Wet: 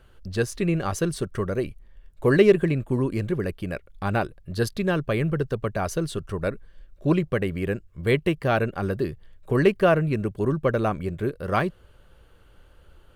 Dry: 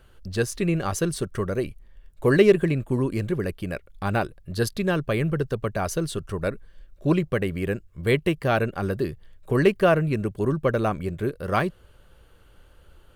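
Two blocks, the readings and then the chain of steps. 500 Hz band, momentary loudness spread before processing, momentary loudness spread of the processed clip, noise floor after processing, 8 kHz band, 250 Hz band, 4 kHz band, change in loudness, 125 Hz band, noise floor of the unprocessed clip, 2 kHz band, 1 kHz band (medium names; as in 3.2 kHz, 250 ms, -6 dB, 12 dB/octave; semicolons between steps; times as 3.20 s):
0.0 dB, 10 LU, 10 LU, -54 dBFS, -3.0 dB, 0.0 dB, -1.5 dB, 0.0 dB, 0.0 dB, -54 dBFS, -0.5 dB, 0.0 dB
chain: treble shelf 5.3 kHz -4.5 dB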